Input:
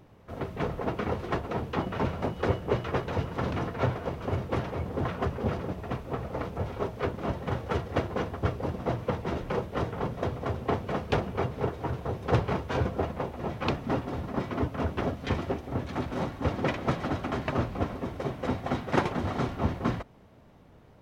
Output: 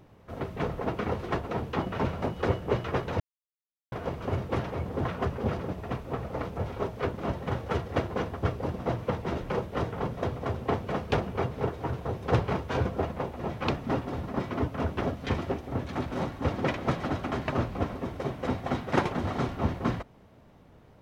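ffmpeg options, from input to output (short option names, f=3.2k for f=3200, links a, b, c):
-filter_complex "[0:a]asplit=3[a][b][c];[a]atrim=end=3.2,asetpts=PTS-STARTPTS,afade=t=out:st=3.196:d=0.004:c=hsin[d];[b]atrim=start=3.2:end=3.92,asetpts=PTS-STARTPTS,volume=0[e];[c]atrim=start=3.92,asetpts=PTS-STARTPTS,afade=t=in:d=0.004:c=hsin[f];[d][e][f]concat=n=3:v=0:a=1"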